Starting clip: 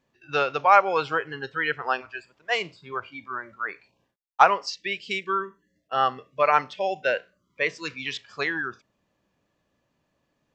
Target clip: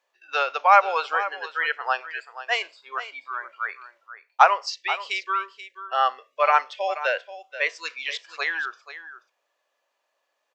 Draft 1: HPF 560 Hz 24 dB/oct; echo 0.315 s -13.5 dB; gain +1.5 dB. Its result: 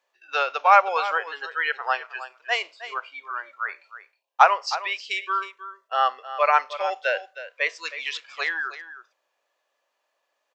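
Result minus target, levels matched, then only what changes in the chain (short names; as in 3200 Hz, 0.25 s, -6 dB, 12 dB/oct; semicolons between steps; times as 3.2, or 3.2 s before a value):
echo 0.167 s early
change: echo 0.482 s -13.5 dB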